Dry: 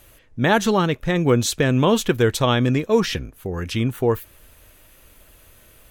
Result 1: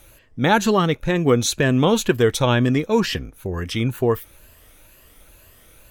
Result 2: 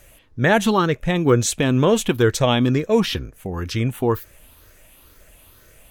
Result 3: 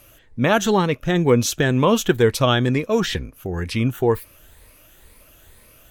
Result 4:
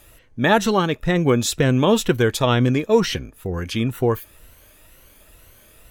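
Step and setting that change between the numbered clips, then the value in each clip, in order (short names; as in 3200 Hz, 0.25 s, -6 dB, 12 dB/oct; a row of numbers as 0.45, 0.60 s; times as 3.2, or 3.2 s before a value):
moving spectral ripple, ripples per octave: 1.4, 0.54, 0.92, 2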